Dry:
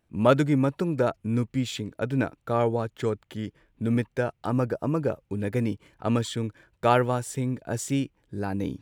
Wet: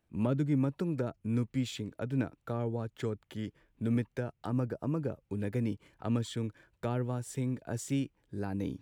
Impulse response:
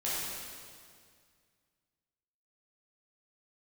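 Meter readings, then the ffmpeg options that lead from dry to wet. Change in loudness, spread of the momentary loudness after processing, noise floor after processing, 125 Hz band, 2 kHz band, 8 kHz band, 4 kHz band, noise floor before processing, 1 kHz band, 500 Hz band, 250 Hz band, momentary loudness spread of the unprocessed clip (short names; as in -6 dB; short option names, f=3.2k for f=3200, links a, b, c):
-7.5 dB, 8 LU, -76 dBFS, -5.0 dB, -12.0 dB, -8.0 dB, -9.0 dB, -72 dBFS, -15.0 dB, -11.0 dB, -6.0 dB, 11 LU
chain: -filter_complex "[0:a]acrossover=split=340[a][b];[b]acompressor=threshold=-33dB:ratio=6[c];[a][c]amix=inputs=2:normalize=0,volume=-5dB"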